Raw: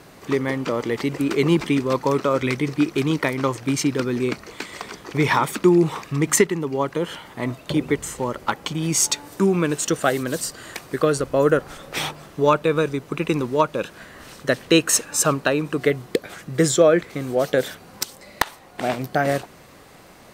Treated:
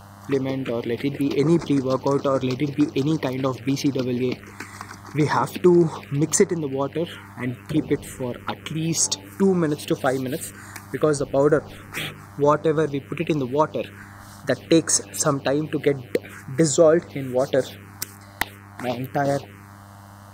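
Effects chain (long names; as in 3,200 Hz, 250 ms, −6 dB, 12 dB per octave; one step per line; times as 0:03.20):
hum with harmonics 100 Hz, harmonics 31, −42 dBFS −4 dB per octave
phaser swept by the level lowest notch 350 Hz, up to 2,900 Hz, full sweep at −15.5 dBFS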